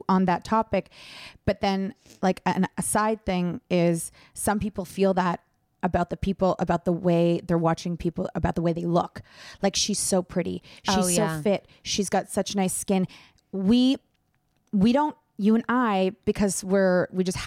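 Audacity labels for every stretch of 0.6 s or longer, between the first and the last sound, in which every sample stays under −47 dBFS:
13.970000	14.730000	silence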